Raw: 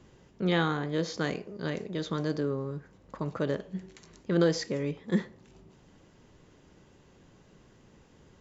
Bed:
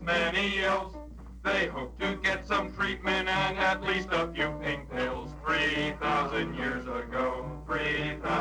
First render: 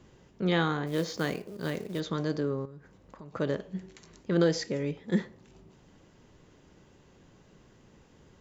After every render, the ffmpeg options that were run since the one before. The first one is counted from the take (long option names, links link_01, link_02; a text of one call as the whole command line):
ffmpeg -i in.wav -filter_complex "[0:a]asplit=3[link_01][link_02][link_03];[link_01]afade=type=out:start_time=0.86:duration=0.02[link_04];[link_02]acrusher=bits=5:mode=log:mix=0:aa=0.000001,afade=type=in:start_time=0.86:duration=0.02,afade=type=out:start_time=1.99:duration=0.02[link_05];[link_03]afade=type=in:start_time=1.99:duration=0.02[link_06];[link_04][link_05][link_06]amix=inputs=3:normalize=0,asettb=1/sr,asplit=3[link_07][link_08][link_09];[link_07]atrim=end=2.654[link_10];[link_08]atrim=start=2.65:end=3.34,asetpts=PTS-STARTPTS,afade=type=in:duration=0.004:curve=qsin,afade=type=out:start_time=0.686:duration=0.004:curve=qsin,acompressor=threshold=-45dB:ratio=4:attack=3.2:release=140:knee=1:detection=peak[link_11];[link_09]atrim=start=3.336[link_12];[link_10][link_11]acrossfade=duration=0.004:curve1=hsin:curve2=qsin[link_13];[link_13][link_12]acrossfade=duration=0.004:curve1=qsin:curve2=hsin,asettb=1/sr,asplit=3[link_14][link_15][link_16];[link_14]atrim=end=4.424[link_17];[link_15]atrim=start=4.42:end=5.23,asetpts=PTS-STARTPTS,afade=type=in:duration=0.004:curve=qsin,afade=type=out:start_time=0.806:duration=0.004:curve=qsin,bandreject=frequency=1100:width=7[link_18];[link_16]atrim=start=5.226[link_19];[link_17][link_18]acrossfade=duration=0.004:curve1=hsin:curve2=qsin[link_20];[link_20][link_19]acrossfade=duration=0.004:curve1=qsin:curve2=hsin" out.wav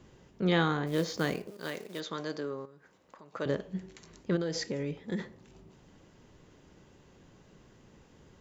ffmpeg -i in.wav -filter_complex "[0:a]asettb=1/sr,asplit=3[link_01][link_02][link_03];[link_01]atrim=end=1.504[link_04];[link_02]atrim=start=1.5:end=3.46,asetpts=PTS-STARTPTS,afade=type=in:duration=0.004:curve=qsin,afade=type=out:start_time=1.956:duration=0.004:curve=qsin,highpass=frequency=630:poles=1[link_05];[link_03]atrim=start=3.456[link_06];[link_04][link_05]acrossfade=duration=0.004:curve1=hsin:curve2=qsin[link_07];[link_07][link_06]acrossfade=duration=0.004:curve1=qsin:curve2=hsin,asplit=3[link_08][link_09][link_10];[link_08]afade=type=out:start_time=4.35:duration=0.02[link_11];[link_09]acompressor=threshold=-29dB:ratio=6:attack=3.2:release=140:knee=1:detection=peak,afade=type=in:start_time=4.35:duration=0.02,afade=type=out:start_time=5.18:duration=0.02[link_12];[link_10]afade=type=in:start_time=5.18:duration=0.02[link_13];[link_11][link_12][link_13]amix=inputs=3:normalize=0" out.wav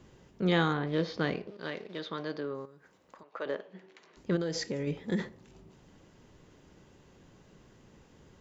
ffmpeg -i in.wav -filter_complex "[0:a]asettb=1/sr,asplit=3[link_01][link_02][link_03];[link_01]atrim=end=0.734[link_04];[link_02]atrim=start=0.73:end=2.55,asetpts=PTS-STARTPTS,afade=type=in:duration=0.004:curve=qsin,afade=type=out:start_time=1.816:duration=0.004:curve=qsin,lowpass=frequency=4400:width=0.5412,lowpass=frequency=4400:width=1.3066[link_05];[link_03]atrim=start=2.546[link_06];[link_04][link_05]acrossfade=duration=0.004:curve1=hsin:curve2=qsin[link_07];[link_07][link_06]acrossfade=duration=0.004:curve1=qsin:curve2=hsin,asettb=1/sr,asplit=3[link_08][link_09][link_10];[link_08]atrim=end=3.234[link_11];[link_09]atrim=start=3.23:end=4.17,asetpts=PTS-STARTPTS,afade=type=in:duration=0.004:curve=qsin,afade=type=out:start_time=0.936:duration=0.004:curve=qsin,highpass=440,lowpass=3300[link_12];[link_10]atrim=start=4.166[link_13];[link_11][link_12]acrossfade=duration=0.004:curve1=hsin:curve2=qsin[link_14];[link_14][link_13]acrossfade=duration=0.004:curve1=qsin:curve2=hsin,asplit=3[link_15][link_16][link_17];[link_15]atrim=end=4.872[link_18];[link_16]atrim=start=4.868:end=5.292,asetpts=PTS-STARTPTS,volume=3.5dB[link_19];[link_17]atrim=start=5.288[link_20];[link_18][link_19]acrossfade=duration=0.004:curve1=hsin:curve2=hsin[link_21];[link_21][link_20]acrossfade=duration=0.004:curve1=hsin:curve2=hsin" out.wav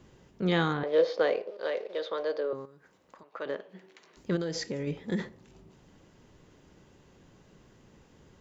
ffmpeg -i in.wav -filter_complex "[0:a]asettb=1/sr,asplit=3[link_01][link_02][link_03];[link_01]atrim=end=0.834[link_04];[link_02]atrim=start=0.83:end=2.53,asetpts=PTS-STARTPTS,afade=type=in:duration=0.004:curve=qsin,afade=type=out:start_time=1.696:duration=0.004:curve=qsin,highpass=frequency=520:width_type=q:width=4.6[link_05];[link_03]atrim=start=2.526[link_06];[link_04][link_05]acrossfade=duration=0.004:curve1=hsin:curve2=qsin[link_07];[link_07][link_06]acrossfade=duration=0.004:curve1=qsin:curve2=hsin,asettb=1/sr,asplit=3[link_08][link_09][link_10];[link_08]atrim=end=3.694[link_11];[link_09]atrim=start=3.69:end=4.45,asetpts=PTS-STARTPTS,afade=type=in:duration=0.004:curve=qsin,afade=type=out:start_time=0.756:duration=0.004:curve=qsin,highshelf=frequency=5300:gain=6[link_12];[link_10]atrim=start=4.446[link_13];[link_11][link_12]acrossfade=duration=0.004:curve1=hsin:curve2=qsin[link_14];[link_14][link_13]acrossfade=duration=0.004:curve1=qsin:curve2=hsin" out.wav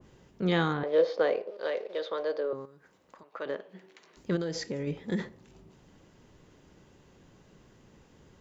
ffmpeg -i in.wav -af "adynamicequalizer=threshold=0.00794:dfrequency=1800:dqfactor=0.7:tfrequency=1800:tqfactor=0.7:attack=5:release=100:ratio=0.375:range=2:mode=cutabove:tftype=highshelf" out.wav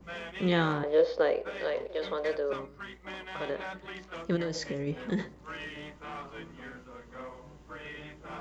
ffmpeg -i in.wav -i bed.wav -filter_complex "[1:a]volume=-14dB[link_01];[0:a][link_01]amix=inputs=2:normalize=0" out.wav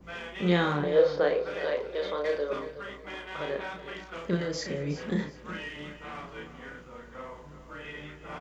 ffmpeg -i in.wav -filter_complex "[0:a]asplit=2[link_01][link_02];[link_02]adelay=34,volume=-4dB[link_03];[link_01][link_03]amix=inputs=2:normalize=0,aecho=1:1:367|734|1101:0.224|0.0672|0.0201" out.wav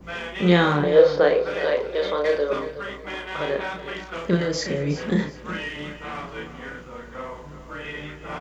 ffmpeg -i in.wav -af "volume=7.5dB" out.wav